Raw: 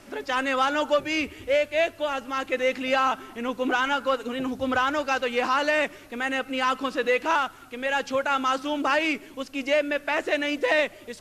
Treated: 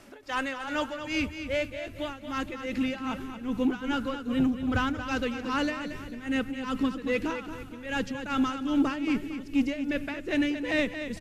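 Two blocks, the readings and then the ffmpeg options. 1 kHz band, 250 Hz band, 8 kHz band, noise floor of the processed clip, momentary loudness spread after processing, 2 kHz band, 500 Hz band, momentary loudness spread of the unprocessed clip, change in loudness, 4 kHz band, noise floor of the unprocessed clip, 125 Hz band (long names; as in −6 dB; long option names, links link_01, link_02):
−9.5 dB, +3.5 dB, −6.5 dB, −43 dBFS, 8 LU, −7.5 dB, −9.0 dB, 7 LU, −5.0 dB, −6.5 dB, −48 dBFS, +10.0 dB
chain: -af "asubboost=boost=11.5:cutoff=210,asoftclip=type=tanh:threshold=-12dB,tremolo=f=2.5:d=0.86,aecho=1:1:228|456|684|912:0.335|0.127|0.0484|0.0184,volume=-2.5dB"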